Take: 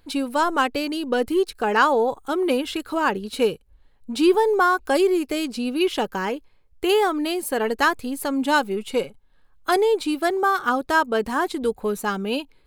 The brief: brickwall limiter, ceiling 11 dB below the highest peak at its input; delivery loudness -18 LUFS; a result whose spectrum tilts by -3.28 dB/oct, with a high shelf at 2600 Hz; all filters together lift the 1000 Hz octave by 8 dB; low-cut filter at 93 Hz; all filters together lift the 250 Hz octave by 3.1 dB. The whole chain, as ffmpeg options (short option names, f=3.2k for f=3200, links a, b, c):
-af "highpass=93,equalizer=f=250:t=o:g=3.5,equalizer=f=1k:t=o:g=8.5,highshelf=f=2.6k:g=6.5,volume=2dB,alimiter=limit=-7.5dB:level=0:latency=1"